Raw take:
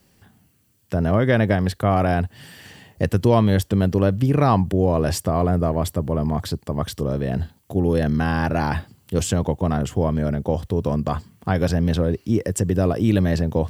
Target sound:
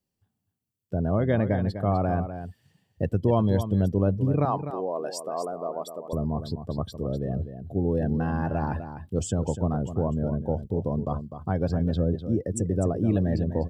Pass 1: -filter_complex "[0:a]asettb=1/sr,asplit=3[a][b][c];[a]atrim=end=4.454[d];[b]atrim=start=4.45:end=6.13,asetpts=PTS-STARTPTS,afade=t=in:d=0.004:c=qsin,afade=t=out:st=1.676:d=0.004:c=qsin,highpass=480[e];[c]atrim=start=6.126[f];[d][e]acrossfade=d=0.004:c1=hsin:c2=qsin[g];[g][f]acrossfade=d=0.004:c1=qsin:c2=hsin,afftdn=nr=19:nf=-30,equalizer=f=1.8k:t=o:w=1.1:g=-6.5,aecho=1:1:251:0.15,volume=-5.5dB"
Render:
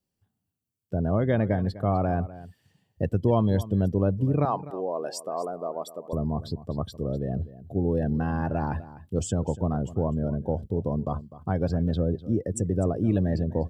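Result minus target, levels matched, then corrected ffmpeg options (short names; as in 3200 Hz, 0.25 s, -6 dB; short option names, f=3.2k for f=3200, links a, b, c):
echo-to-direct -6.5 dB
-filter_complex "[0:a]asettb=1/sr,asplit=3[a][b][c];[a]atrim=end=4.454[d];[b]atrim=start=4.45:end=6.13,asetpts=PTS-STARTPTS,afade=t=in:d=0.004:c=qsin,afade=t=out:st=1.676:d=0.004:c=qsin,highpass=480[e];[c]atrim=start=6.126[f];[d][e]acrossfade=d=0.004:c1=hsin:c2=qsin[g];[g][f]acrossfade=d=0.004:c1=qsin:c2=hsin,afftdn=nr=19:nf=-30,equalizer=f=1.8k:t=o:w=1.1:g=-6.5,aecho=1:1:251:0.316,volume=-5.5dB"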